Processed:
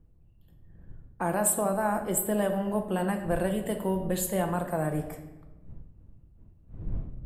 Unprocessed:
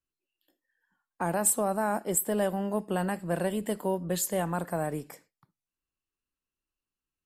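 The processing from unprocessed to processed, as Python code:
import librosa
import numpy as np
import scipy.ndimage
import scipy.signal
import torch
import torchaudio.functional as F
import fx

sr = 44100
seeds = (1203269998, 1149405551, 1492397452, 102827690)

y = fx.dmg_wind(x, sr, seeds[0], corner_hz=87.0, level_db=-45.0)
y = fx.peak_eq(y, sr, hz=5400.0, db=-7.5, octaves=0.73)
y = fx.room_shoebox(y, sr, seeds[1], volume_m3=600.0, walls='mixed', distance_m=0.75)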